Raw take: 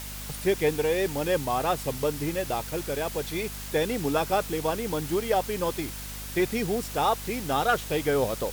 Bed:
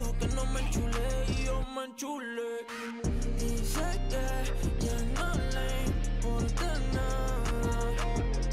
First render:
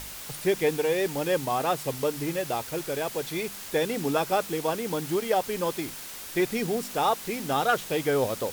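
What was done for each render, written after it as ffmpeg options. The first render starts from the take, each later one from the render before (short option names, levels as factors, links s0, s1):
-af "bandreject=f=50:t=h:w=4,bandreject=f=100:t=h:w=4,bandreject=f=150:t=h:w=4,bandreject=f=200:t=h:w=4,bandreject=f=250:t=h:w=4"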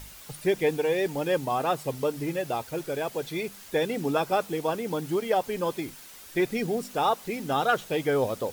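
-af "afftdn=nr=8:nf=-40"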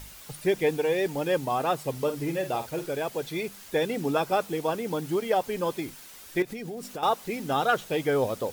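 -filter_complex "[0:a]asettb=1/sr,asplit=3[s0][s1][s2];[s0]atrim=end=1.914[s3];[s1]atrim=start=1.91:end=2.88,asetpts=PTS-STARTPTS,afade=t=in:d=0.004:c=qsin,afade=t=out:st=0.966:d=0.004:c=qsin,asplit=2[s4][s5];[s5]adelay=48,volume=0.316[s6];[s4][s6]amix=inputs=2:normalize=0,atrim=end_sample=42777[s7];[s2]atrim=start=2.876[s8];[s3][s7]acrossfade=d=0.004:c1=hsin:c2=qsin[s9];[s9][s8]acrossfade=d=0.004:c1=qsin:c2=hsin,asettb=1/sr,asplit=3[s10][s11][s12];[s10]atrim=end=6.424[s13];[s11]atrim=start=6.42:end=7.03,asetpts=PTS-STARTPTS,afade=t=in:d=0.004:c=qsin,afade=t=out:st=0.606:d=0.004:c=qsin,acompressor=threshold=0.0251:ratio=12:attack=3.2:release=140:knee=1:detection=peak[s14];[s12]atrim=start=7.026[s15];[s13][s14]acrossfade=d=0.004:c1=hsin:c2=qsin[s16];[s16][s15]acrossfade=d=0.004:c1=qsin:c2=hsin"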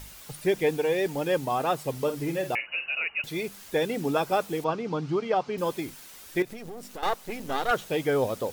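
-filter_complex "[0:a]asettb=1/sr,asplit=3[s0][s1][s2];[s0]atrim=end=2.554[s3];[s1]atrim=start=2.55:end=3.24,asetpts=PTS-STARTPTS,afade=t=in:d=0.004:c=qsin,afade=t=out:st=0.686:d=0.004:c=qsin,lowpass=f=2600:t=q:w=0.5098,lowpass=f=2600:t=q:w=0.6013,lowpass=f=2600:t=q:w=0.9,lowpass=f=2600:t=q:w=2.563,afreqshift=-3000[s4];[s2]atrim=start=3.236[s5];[s3][s4]acrossfade=d=0.004:c1=hsin:c2=qsin[s6];[s6][s5]acrossfade=d=0.004:c1=qsin:c2=hsin,asettb=1/sr,asplit=3[s7][s8][s9];[s7]atrim=end=4.644[s10];[s8]atrim=start=4.64:end=5.58,asetpts=PTS-STARTPTS,afade=t=in:d=0.004:c=qsin,afade=t=out:st=0.936:d=0.004:c=qsin,highpass=120,equalizer=f=140:t=q:w=4:g=8,equalizer=f=550:t=q:w=4:g=-3,equalizer=f=1200:t=q:w=4:g=6,equalizer=f=1800:t=q:w=4:g=-5,equalizer=f=3400:t=q:w=4:g=-4,lowpass=f=5300:w=0.5412,lowpass=f=5300:w=1.3066[s11];[s9]atrim=start=5.576[s12];[s10][s11]acrossfade=d=0.004:c1=hsin:c2=qsin[s13];[s13][s12]acrossfade=d=0.004:c1=qsin:c2=hsin,asettb=1/sr,asplit=3[s14][s15][s16];[s14]atrim=end=6.484[s17];[s15]atrim=start=6.48:end=7.71,asetpts=PTS-STARTPTS,afade=t=in:d=0.004:c=qsin,afade=t=out:st=1.226:d=0.004:c=qsin,aeval=exprs='if(lt(val(0),0),0.251*val(0),val(0))':c=same[s18];[s16]atrim=start=7.706[s19];[s17][s18]acrossfade=d=0.004:c1=hsin:c2=qsin[s20];[s20][s19]acrossfade=d=0.004:c1=qsin:c2=hsin"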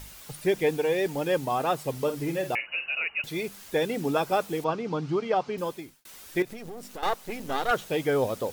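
-filter_complex "[0:a]asplit=2[s0][s1];[s0]atrim=end=6.05,asetpts=PTS-STARTPTS,afade=t=out:st=5.49:d=0.56[s2];[s1]atrim=start=6.05,asetpts=PTS-STARTPTS,afade=t=in:d=0.004:c=hsin[s3];[s2][s3]concat=n=2:v=0:a=1"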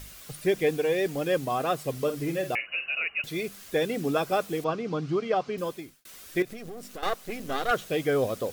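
-af "bandreject=f=890:w=5.2"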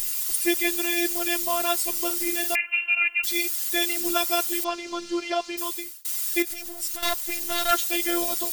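-af "crystalizer=i=9.5:c=0,afftfilt=real='hypot(re,im)*cos(PI*b)':imag='0':win_size=512:overlap=0.75"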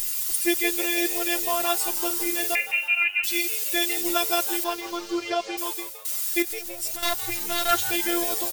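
-filter_complex "[0:a]asplit=6[s0][s1][s2][s3][s4][s5];[s1]adelay=163,afreqshift=100,volume=0.211[s6];[s2]adelay=326,afreqshift=200,volume=0.108[s7];[s3]adelay=489,afreqshift=300,volume=0.055[s8];[s4]adelay=652,afreqshift=400,volume=0.0282[s9];[s5]adelay=815,afreqshift=500,volume=0.0143[s10];[s0][s6][s7][s8][s9][s10]amix=inputs=6:normalize=0"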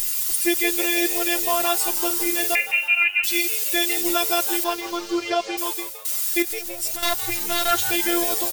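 -af "volume=1.5,alimiter=limit=0.794:level=0:latency=1"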